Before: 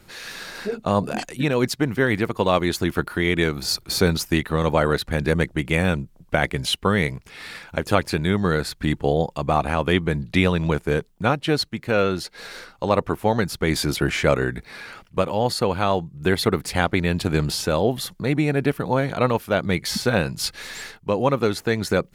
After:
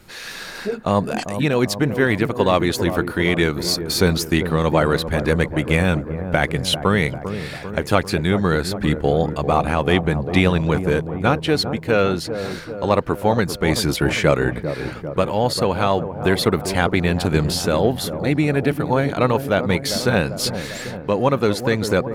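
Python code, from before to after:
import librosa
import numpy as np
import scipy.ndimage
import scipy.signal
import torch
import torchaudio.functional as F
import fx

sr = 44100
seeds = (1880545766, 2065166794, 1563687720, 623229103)

p1 = 10.0 ** (-11.5 / 20.0) * np.tanh(x / 10.0 ** (-11.5 / 20.0))
p2 = x + F.gain(torch.from_numpy(p1), -9.0).numpy()
y = fx.echo_wet_lowpass(p2, sr, ms=396, feedback_pct=62, hz=940.0, wet_db=-9.0)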